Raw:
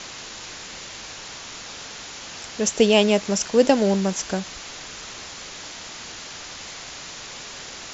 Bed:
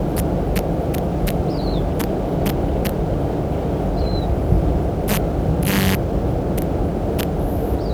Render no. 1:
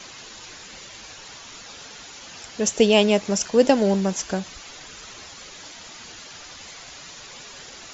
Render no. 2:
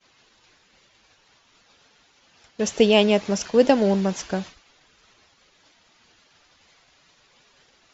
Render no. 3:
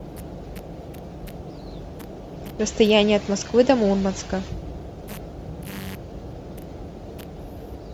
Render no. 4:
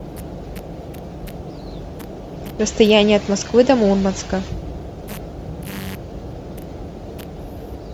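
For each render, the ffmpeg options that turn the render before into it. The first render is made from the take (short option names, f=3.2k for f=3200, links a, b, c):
-af "afftdn=nr=8:nf=-38"
-af "agate=range=-33dB:threshold=-30dB:ratio=3:detection=peak,lowpass=4.9k"
-filter_complex "[1:a]volume=-16.5dB[a];[0:a][a]amix=inputs=2:normalize=0"
-af "volume=4.5dB,alimiter=limit=-1dB:level=0:latency=1"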